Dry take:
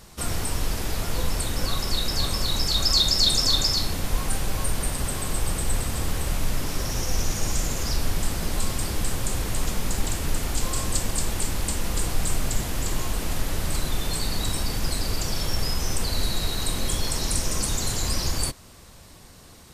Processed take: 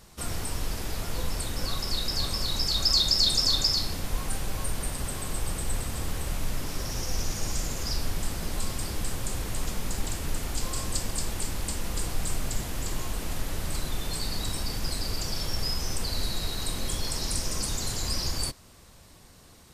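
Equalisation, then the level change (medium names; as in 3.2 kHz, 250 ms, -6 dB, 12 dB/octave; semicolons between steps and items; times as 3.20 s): dynamic bell 4.9 kHz, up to +6 dB, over -41 dBFS, Q 4.8; -5.0 dB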